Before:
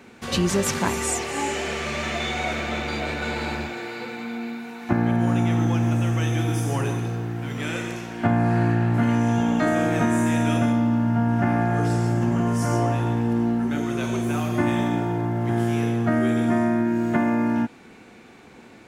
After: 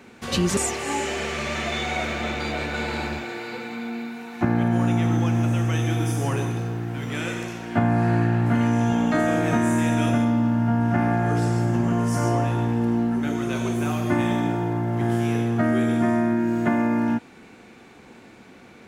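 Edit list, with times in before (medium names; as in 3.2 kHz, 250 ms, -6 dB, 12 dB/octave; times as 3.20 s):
0.57–1.05 s: delete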